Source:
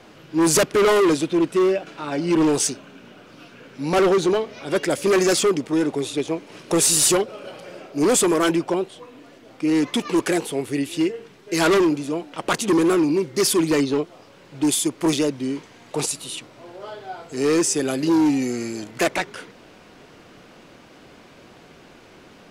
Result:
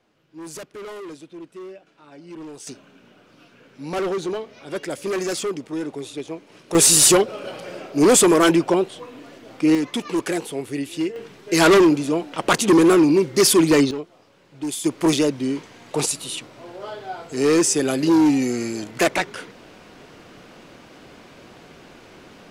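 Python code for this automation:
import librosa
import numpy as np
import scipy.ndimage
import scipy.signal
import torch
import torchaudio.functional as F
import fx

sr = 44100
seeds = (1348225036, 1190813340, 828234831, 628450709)

y = fx.gain(x, sr, db=fx.steps((0.0, -19.0), (2.67, -7.0), (6.75, 4.0), (9.75, -3.0), (11.16, 4.0), (13.91, -7.5), (14.84, 2.0)))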